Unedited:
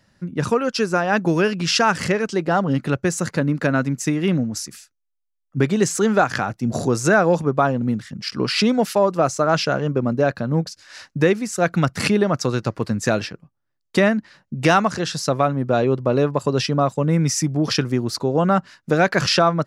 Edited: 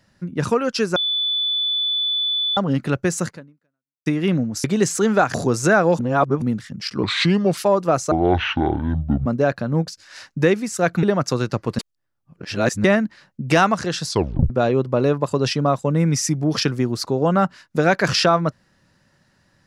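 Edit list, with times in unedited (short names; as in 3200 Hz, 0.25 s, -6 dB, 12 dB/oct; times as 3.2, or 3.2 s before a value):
0.96–2.57 bleep 3480 Hz -18.5 dBFS
3.25–4.06 fade out exponential
4.64–5.64 cut
6.34–6.75 cut
7.4–7.83 reverse
8.44–8.88 speed 81%
9.42–10.05 speed 55%
11.82–12.16 cut
12.92–13.97 reverse
15.2 tape stop 0.43 s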